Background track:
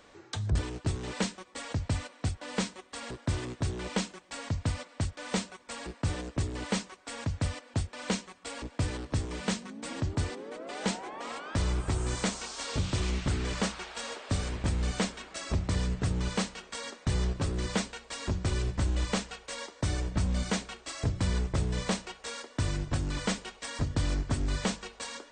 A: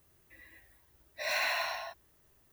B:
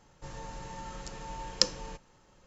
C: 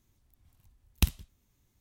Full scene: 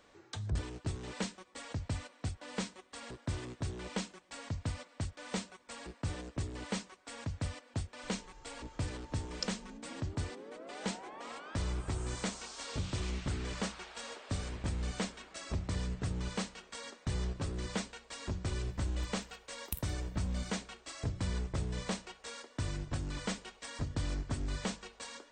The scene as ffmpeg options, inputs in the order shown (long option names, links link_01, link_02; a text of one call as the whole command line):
ffmpeg -i bed.wav -i cue0.wav -i cue1.wav -i cue2.wav -filter_complex "[0:a]volume=-6.5dB[link_01];[2:a]aecho=1:1:2.5:0.95[link_02];[3:a]aexciter=amount=4.6:drive=5:freq=8000[link_03];[link_02]atrim=end=2.46,asetpts=PTS-STARTPTS,volume=-17dB,afade=type=in:duration=0.004:curve=hsin,afade=type=out:start_time=2.456:duration=0.004:curve=hsin,adelay=7810[link_04];[link_03]atrim=end=1.8,asetpts=PTS-STARTPTS,volume=-17dB,afade=type=in:duration=0.004:curve=hsin,afade=type=out:start_time=1.796:duration=0.004:curve=hsin,adelay=18700[link_05];[link_01][link_04][link_05]amix=inputs=3:normalize=0" out.wav